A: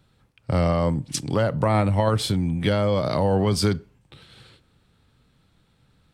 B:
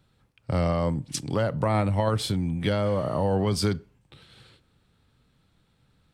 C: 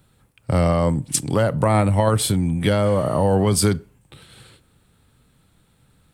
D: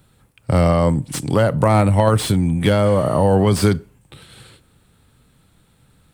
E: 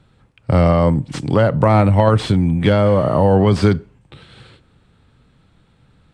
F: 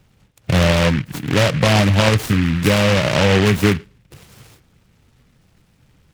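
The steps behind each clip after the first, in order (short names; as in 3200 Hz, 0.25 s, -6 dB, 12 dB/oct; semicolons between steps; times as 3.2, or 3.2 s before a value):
spectral repair 2.87–3.2, 1400–10000 Hz both; gain -3.5 dB
resonant high shelf 6900 Hz +7.5 dB, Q 1.5; gain +6.5 dB
slew limiter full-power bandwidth 290 Hz; gain +3 dB
air absorption 120 m; gain +2 dB
bin magnitudes rounded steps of 15 dB; noise-modulated delay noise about 1900 Hz, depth 0.18 ms; gain -1 dB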